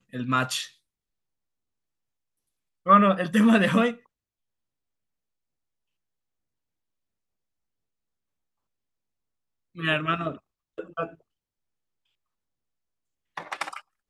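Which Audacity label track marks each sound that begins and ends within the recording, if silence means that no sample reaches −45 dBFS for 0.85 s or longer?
2.860000	3.980000	sound
9.750000	11.140000	sound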